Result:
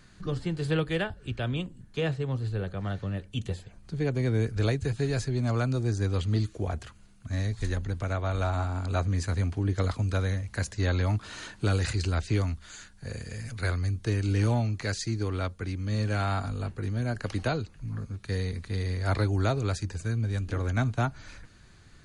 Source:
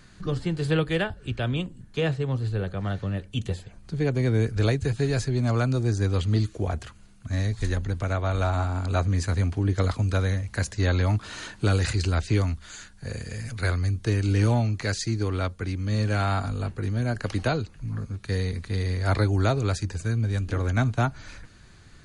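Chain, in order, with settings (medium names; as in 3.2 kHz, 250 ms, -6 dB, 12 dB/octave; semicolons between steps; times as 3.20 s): hard clipper -12.5 dBFS, distortion -40 dB; trim -3.5 dB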